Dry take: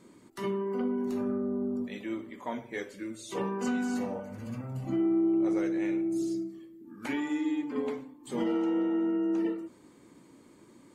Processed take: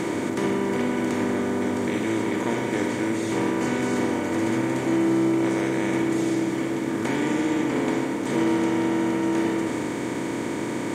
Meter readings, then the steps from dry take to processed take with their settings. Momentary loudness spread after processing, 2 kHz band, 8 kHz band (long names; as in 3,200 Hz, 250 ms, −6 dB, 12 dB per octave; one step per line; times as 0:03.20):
4 LU, +13.0 dB, +13.5 dB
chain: compressor on every frequency bin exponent 0.2
on a send: backwards echo 1,117 ms −7 dB